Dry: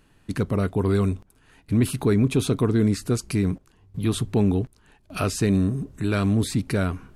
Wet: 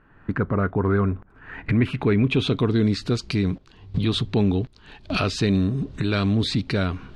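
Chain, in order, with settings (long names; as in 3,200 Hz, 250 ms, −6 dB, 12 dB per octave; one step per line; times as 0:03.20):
camcorder AGC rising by 31 dB per second
low-pass filter sweep 1,500 Hz → 4,000 Hz, 0:01.27–0:02.76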